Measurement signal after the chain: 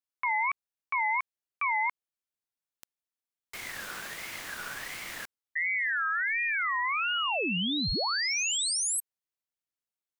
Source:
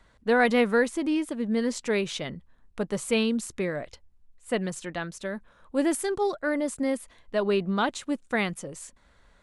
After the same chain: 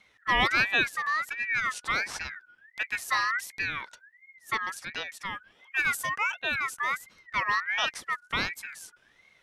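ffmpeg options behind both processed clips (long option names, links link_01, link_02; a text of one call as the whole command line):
ffmpeg -i in.wav -af "aeval=exprs='val(0)*sin(2*PI*1800*n/s+1800*0.2/1.4*sin(2*PI*1.4*n/s))':channel_layout=same" out.wav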